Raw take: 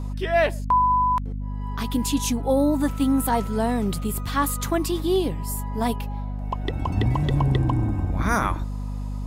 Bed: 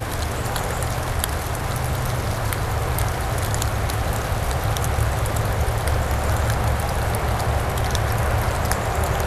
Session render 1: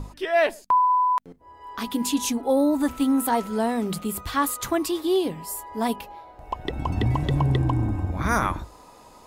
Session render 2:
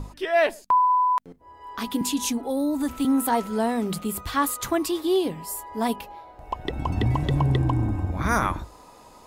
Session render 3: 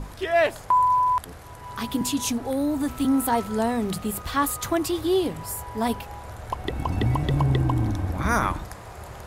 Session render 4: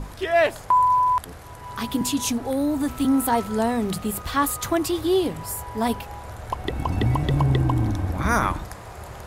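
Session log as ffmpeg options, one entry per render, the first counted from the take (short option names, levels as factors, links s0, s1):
-af "bandreject=f=50:t=h:w=6,bandreject=f=100:t=h:w=6,bandreject=f=150:t=h:w=6,bandreject=f=200:t=h:w=6,bandreject=f=250:t=h:w=6"
-filter_complex "[0:a]asettb=1/sr,asplit=3[s0][s1][s2];[s0]atrim=end=2.014[s3];[s1]atrim=start=2.01:end=3.05,asetpts=PTS-STARTPTS,afade=t=in:d=0.004:c=qsin,afade=t=out:st=1.036:d=0.004:c=qsin,acrossover=split=270|3000[s4][s5][s6];[s5]acompressor=threshold=0.0316:ratio=2.5:attack=3.2:release=140:knee=2.83:detection=peak[s7];[s4][s7][s6]amix=inputs=3:normalize=0[s8];[s2]atrim=start=3.046[s9];[s3][s8]acrossfade=d=0.004:c1=hsin:c2=qsin[s10];[s10][s9]acrossfade=d=0.004:c1=qsin:c2=hsin"
-filter_complex "[1:a]volume=0.119[s0];[0:a][s0]amix=inputs=2:normalize=0"
-af "volume=1.19"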